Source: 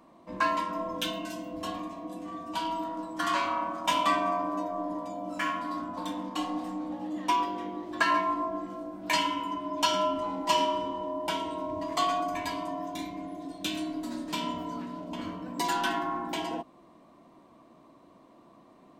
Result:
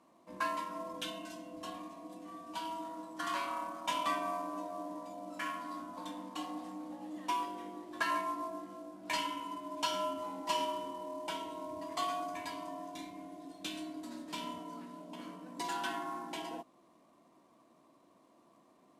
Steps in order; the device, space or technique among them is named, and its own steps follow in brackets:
0:14.59–0:15.74: elliptic high-pass filter 150 Hz, stop band 80 dB
early wireless headset (high-pass filter 180 Hz 6 dB per octave; variable-slope delta modulation 64 kbit/s)
level −8 dB

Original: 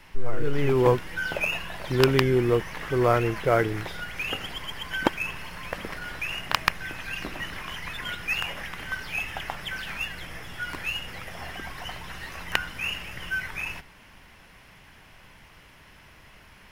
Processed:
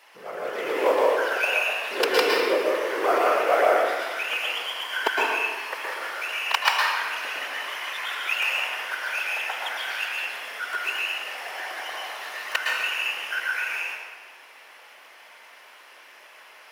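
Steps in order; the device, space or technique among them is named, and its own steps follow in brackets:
whispering ghost (random phases in short frames; high-pass filter 470 Hz 24 dB per octave; convolution reverb RT60 1.4 s, pre-delay 106 ms, DRR −3.5 dB)

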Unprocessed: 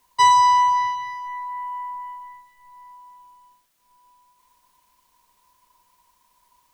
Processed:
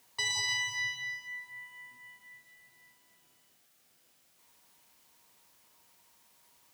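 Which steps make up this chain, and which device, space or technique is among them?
PA system with an anti-feedback notch (high-pass filter 100 Hz 12 dB per octave; Butterworth band-reject 1,000 Hz, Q 5.7; brickwall limiter −25 dBFS, peak gain reduction 11 dB)
level +1.5 dB

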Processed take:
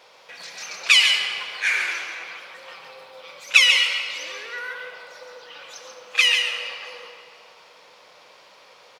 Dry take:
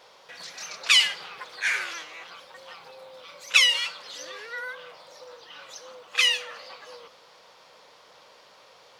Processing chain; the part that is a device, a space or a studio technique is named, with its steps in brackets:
PA in a hall (high-pass filter 120 Hz 6 dB per octave; parametric band 2,400 Hz +5.5 dB 0.34 octaves; single-tap delay 138 ms −7 dB; convolution reverb RT60 2.7 s, pre-delay 62 ms, DRR 6.5 dB)
level +1 dB

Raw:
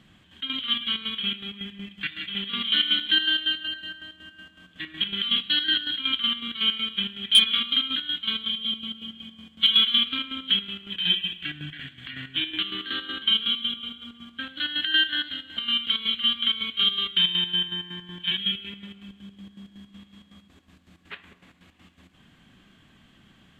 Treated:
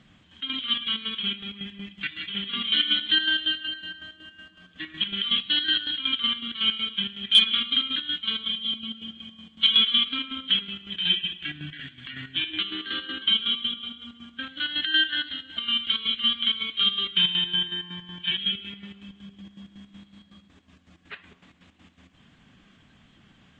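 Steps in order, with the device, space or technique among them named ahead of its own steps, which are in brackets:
clip after many re-uploads (low-pass filter 7,600 Hz 24 dB per octave; spectral magnitudes quantised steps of 15 dB)

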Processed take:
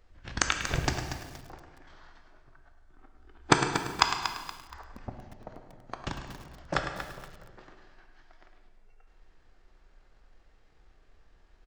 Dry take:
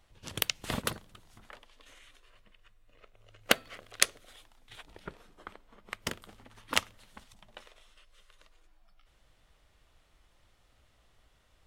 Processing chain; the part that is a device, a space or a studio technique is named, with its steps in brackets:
0:03.82–0:04.95: graphic EQ with 10 bands 125 Hz +7 dB, 250 Hz −10 dB, 500 Hz −5 dB, 1,000 Hz −4 dB, 2,000 Hz +7 dB, 4,000 Hz −5 dB, 8,000 Hz −4 dB
monster voice (pitch shifter −8.5 semitones; formants moved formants −3 semitones; low-shelf EQ 120 Hz +5.5 dB; single-tap delay 105 ms −10.5 dB; convolution reverb RT60 1.6 s, pre-delay 14 ms, DRR 5.5 dB)
feedback echo at a low word length 236 ms, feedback 35%, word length 7 bits, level −9.5 dB
level +1 dB

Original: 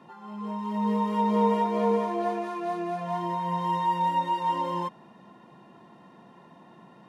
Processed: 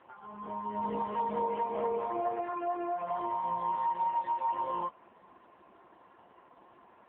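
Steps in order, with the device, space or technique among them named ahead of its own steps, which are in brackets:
voicemail (band-pass filter 390–2,700 Hz; downward compressor 8 to 1, threshold −27 dBFS, peak gain reduction 7 dB; AMR narrowband 5.15 kbit/s 8,000 Hz)

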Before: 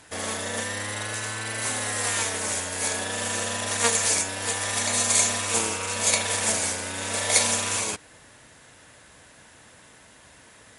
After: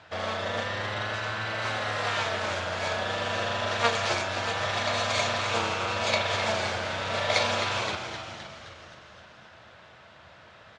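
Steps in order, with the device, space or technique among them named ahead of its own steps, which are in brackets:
frequency-shifting delay pedal into a guitar cabinet (echo with shifted repeats 260 ms, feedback 60%, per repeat −110 Hz, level −8.5 dB; loudspeaker in its box 81–4,300 Hz, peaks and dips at 84 Hz +6 dB, 270 Hz −10 dB, 420 Hz −4 dB, 640 Hz +6 dB, 1,300 Hz +5 dB, 1,900 Hz −3 dB)

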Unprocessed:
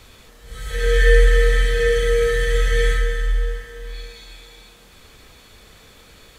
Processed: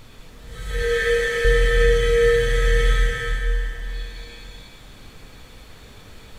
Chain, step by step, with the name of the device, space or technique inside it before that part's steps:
0:00.82–0:01.45: high-pass filter 260 Hz 12 dB per octave
car interior (parametric band 140 Hz +5 dB 0.82 octaves; high-shelf EQ 5,000 Hz −4 dB; brown noise bed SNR 24 dB)
reverb whose tail is shaped and stops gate 490 ms flat, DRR 0.5 dB
level −1.5 dB

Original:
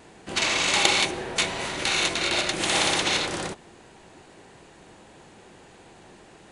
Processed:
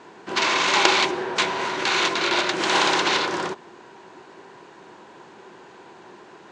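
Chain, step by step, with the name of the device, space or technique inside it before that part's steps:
full-range speaker at full volume (highs frequency-modulated by the lows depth 0.31 ms; loudspeaker in its box 160–6,700 Hz, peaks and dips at 380 Hz +7 dB, 1,000 Hz +10 dB, 1,500 Hz +6 dB)
level +1 dB

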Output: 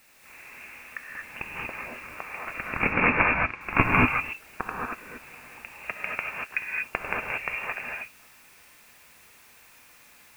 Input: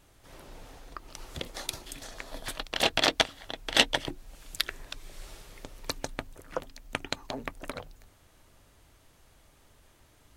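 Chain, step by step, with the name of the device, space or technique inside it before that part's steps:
scrambled radio voice (band-pass filter 340–2,900 Hz; voice inversion scrambler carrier 3,000 Hz; white noise bed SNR 26 dB)
0:02.69–0:03.61: high-frequency loss of the air 130 metres
reverb whose tail is shaped and stops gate 260 ms rising, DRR −2.5 dB
level +4.5 dB

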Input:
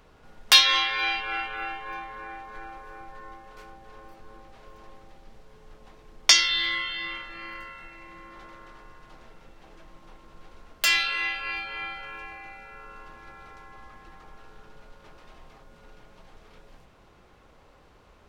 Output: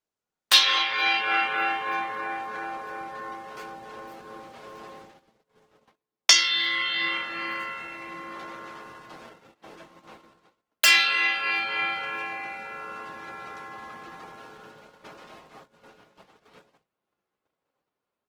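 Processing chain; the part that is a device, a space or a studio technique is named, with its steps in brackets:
video call (high-pass filter 170 Hz 12 dB per octave; automatic gain control gain up to 9 dB; noise gate −44 dBFS, range −35 dB; level −1 dB; Opus 16 kbit/s 48,000 Hz)

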